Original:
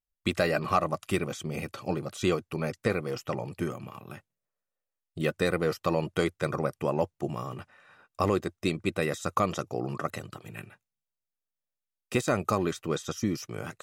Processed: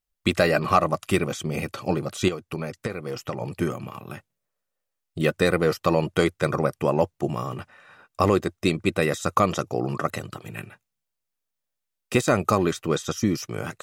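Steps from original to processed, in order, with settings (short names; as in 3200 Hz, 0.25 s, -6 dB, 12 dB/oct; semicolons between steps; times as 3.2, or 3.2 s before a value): 2.28–3.41 compressor 10:1, threshold -32 dBFS, peak gain reduction 11.5 dB; gain +6 dB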